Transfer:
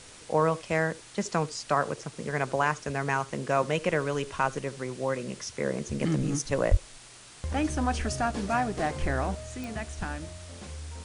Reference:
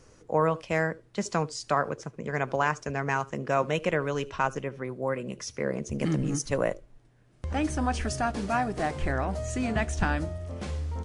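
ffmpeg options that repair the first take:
-filter_complex "[0:a]adeclick=t=4,asplit=3[a][b][c];[a]afade=t=out:st=6.7:d=0.02[d];[b]highpass=f=140:w=0.5412,highpass=f=140:w=1.3066,afade=t=in:st=6.7:d=0.02,afade=t=out:st=6.82:d=0.02[e];[c]afade=t=in:st=6.82:d=0.02[f];[d][e][f]amix=inputs=3:normalize=0,afwtdn=0.0045,asetnsamples=n=441:p=0,asendcmd='9.35 volume volume 8dB',volume=0dB"

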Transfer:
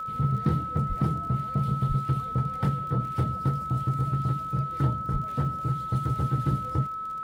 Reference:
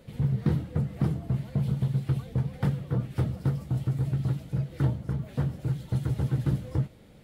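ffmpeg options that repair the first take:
-filter_complex "[0:a]adeclick=t=4,bandreject=f=1.3k:w=30,asplit=3[a][b][c];[a]afade=t=out:st=0.88:d=0.02[d];[b]highpass=f=140:w=0.5412,highpass=f=140:w=1.3066,afade=t=in:st=0.88:d=0.02,afade=t=out:st=1:d=0.02[e];[c]afade=t=in:st=1:d=0.02[f];[d][e][f]amix=inputs=3:normalize=0,asplit=3[g][h][i];[g]afade=t=out:st=1.88:d=0.02[j];[h]highpass=f=140:w=0.5412,highpass=f=140:w=1.3066,afade=t=in:st=1.88:d=0.02,afade=t=out:st=2:d=0.02[k];[i]afade=t=in:st=2:d=0.02[l];[j][k][l]amix=inputs=3:normalize=0,asplit=3[m][n][o];[m]afade=t=out:st=5.12:d=0.02[p];[n]highpass=f=140:w=0.5412,highpass=f=140:w=1.3066,afade=t=in:st=5.12:d=0.02,afade=t=out:st=5.24:d=0.02[q];[o]afade=t=in:st=5.24:d=0.02[r];[p][q][r]amix=inputs=3:normalize=0"

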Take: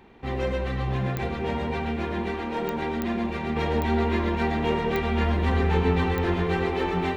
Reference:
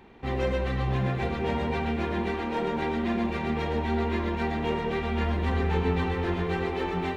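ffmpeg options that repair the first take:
-af "adeclick=t=4,asetnsamples=n=441:p=0,asendcmd='3.56 volume volume -3.5dB',volume=0dB"

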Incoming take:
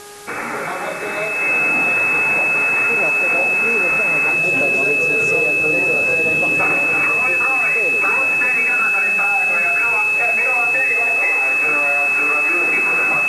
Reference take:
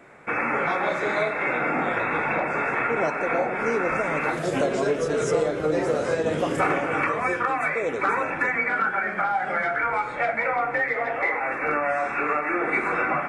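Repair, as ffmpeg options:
-af "bandreject=f=411.1:t=h:w=4,bandreject=f=822.2:t=h:w=4,bandreject=f=1.2333k:t=h:w=4,bandreject=f=1.6444k:t=h:w=4,bandreject=f=2.6k:w=30,afwtdn=0.013"

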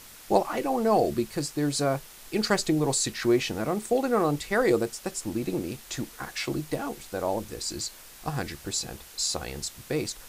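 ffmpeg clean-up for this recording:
-af "afwtdn=0.0045"

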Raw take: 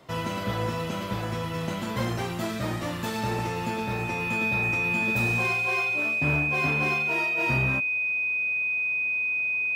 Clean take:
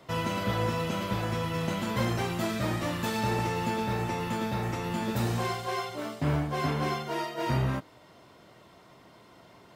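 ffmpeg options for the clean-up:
-af "bandreject=f=2.5k:w=30"

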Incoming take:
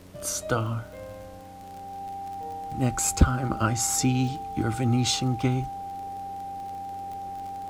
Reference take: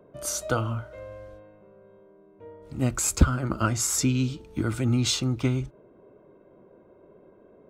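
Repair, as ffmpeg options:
-af "adeclick=t=4,bandreject=f=92.2:t=h:w=4,bandreject=f=184.4:t=h:w=4,bandreject=f=276.6:t=h:w=4,bandreject=f=790:w=30,agate=range=-21dB:threshold=-33dB"

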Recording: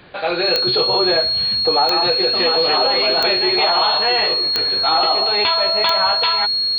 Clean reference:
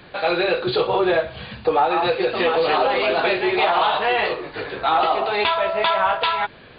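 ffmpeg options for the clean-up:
-af "adeclick=t=4,bandreject=f=4.3k:w=30"

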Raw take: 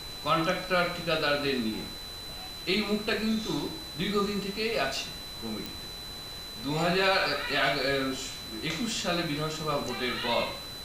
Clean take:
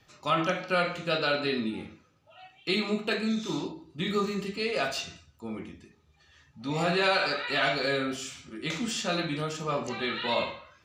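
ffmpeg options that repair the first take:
-af "adeclick=t=4,bandreject=f=4k:w=30,afftdn=nr=19:nf=-41"

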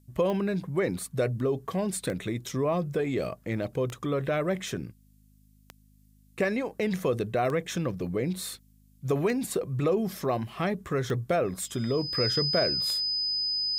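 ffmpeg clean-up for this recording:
-af "adeclick=t=4,bandreject=f=51.7:t=h:w=4,bandreject=f=103.4:t=h:w=4,bandreject=f=155.1:t=h:w=4,bandreject=f=206.8:t=h:w=4,bandreject=f=258.5:t=h:w=4,bandreject=f=5k:w=30,agate=range=-21dB:threshold=-52dB"

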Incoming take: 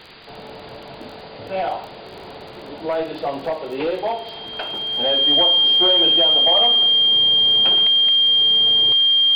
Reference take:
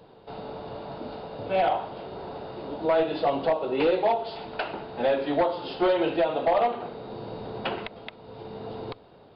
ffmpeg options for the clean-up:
-af "adeclick=t=4,bandreject=f=3.2k:w=30,afwtdn=0.013"

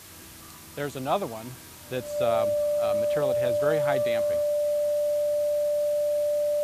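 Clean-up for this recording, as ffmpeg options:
-af "bandreject=f=94.7:t=h:w=4,bandreject=f=189.4:t=h:w=4,bandreject=f=284.1:t=h:w=4,bandreject=f=378.8:t=h:w=4,bandreject=f=590:w=30,afftdn=nr=27:nf=-46"

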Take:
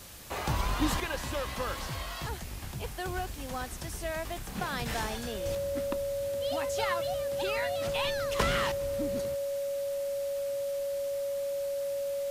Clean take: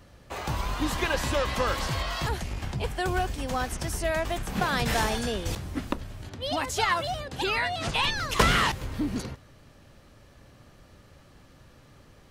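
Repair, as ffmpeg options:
-af "adeclick=t=4,bandreject=f=560:w=30,afwtdn=0.004,asetnsamples=n=441:p=0,asendcmd='1 volume volume 7.5dB',volume=0dB"

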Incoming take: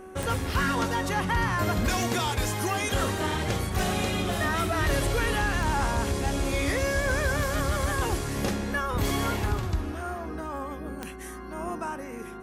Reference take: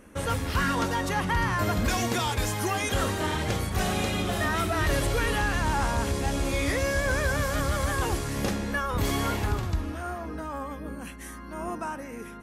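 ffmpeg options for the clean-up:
-af "adeclick=t=4,bandreject=f=376.2:t=h:w=4,bandreject=f=752.4:t=h:w=4,bandreject=f=1.1286k:t=h:w=4,bandreject=f=1.5048k:t=h:w=4"

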